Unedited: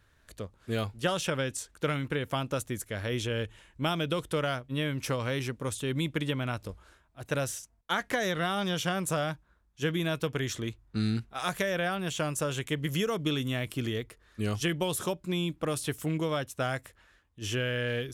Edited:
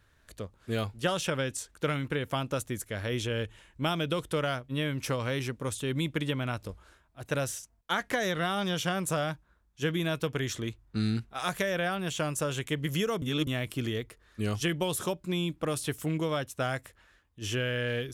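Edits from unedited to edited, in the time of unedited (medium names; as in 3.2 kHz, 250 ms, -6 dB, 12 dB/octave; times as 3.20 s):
13.22–13.47 s: reverse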